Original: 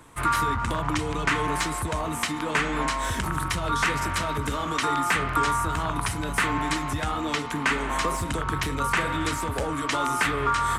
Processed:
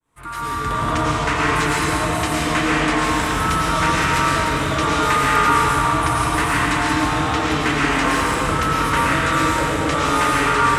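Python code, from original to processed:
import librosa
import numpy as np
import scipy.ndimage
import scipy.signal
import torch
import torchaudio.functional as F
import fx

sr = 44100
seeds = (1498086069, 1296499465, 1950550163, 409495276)

y = fx.fade_in_head(x, sr, length_s=0.77)
y = fx.rev_freeverb(y, sr, rt60_s=3.9, hf_ratio=0.8, predelay_ms=65, drr_db=-7.5)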